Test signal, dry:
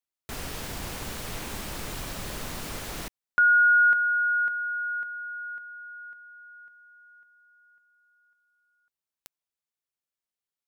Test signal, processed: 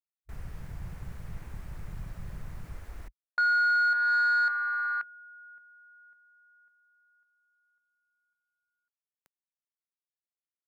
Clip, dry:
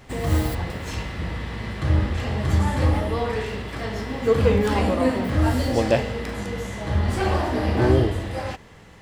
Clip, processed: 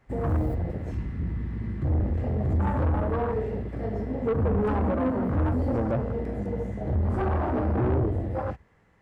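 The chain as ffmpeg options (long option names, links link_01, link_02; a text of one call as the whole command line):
ffmpeg -i in.wav -filter_complex "[0:a]afwtdn=0.0501,highshelf=frequency=2500:width_type=q:width=1.5:gain=-7,acrossover=split=320[link_01][link_02];[link_02]alimiter=limit=-19dB:level=0:latency=1:release=224[link_03];[link_01][link_03]amix=inputs=2:normalize=0,asoftclip=type=tanh:threshold=-21dB,volume=1dB" out.wav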